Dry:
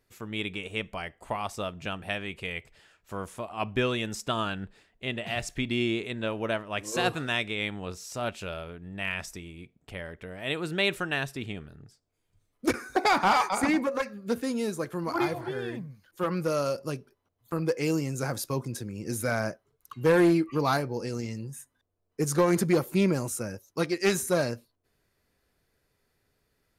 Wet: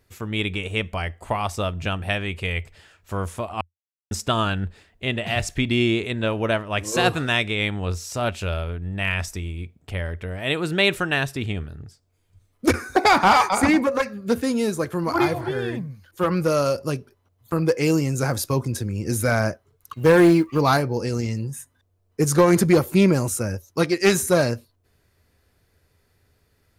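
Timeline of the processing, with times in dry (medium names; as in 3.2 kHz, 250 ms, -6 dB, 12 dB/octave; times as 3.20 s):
3.61–4.11 s: mute
19.94–20.60 s: companding laws mixed up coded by A
whole clip: peaking EQ 85 Hz +12.5 dB 0.54 oct; trim +7 dB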